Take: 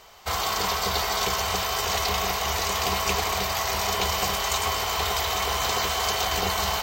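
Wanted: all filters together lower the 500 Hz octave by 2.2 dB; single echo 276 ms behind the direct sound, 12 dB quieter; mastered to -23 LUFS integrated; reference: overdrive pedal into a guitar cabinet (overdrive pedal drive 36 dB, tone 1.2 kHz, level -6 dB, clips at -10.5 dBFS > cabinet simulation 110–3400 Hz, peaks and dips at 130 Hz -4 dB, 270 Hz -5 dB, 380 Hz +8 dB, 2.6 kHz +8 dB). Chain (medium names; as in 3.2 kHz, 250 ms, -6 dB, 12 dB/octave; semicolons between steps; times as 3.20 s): peaking EQ 500 Hz -6.5 dB; delay 276 ms -12 dB; overdrive pedal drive 36 dB, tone 1.2 kHz, level -6 dB, clips at -10.5 dBFS; cabinet simulation 110–3400 Hz, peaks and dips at 130 Hz -4 dB, 270 Hz -5 dB, 380 Hz +8 dB, 2.6 kHz +8 dB; trim -2.5 dB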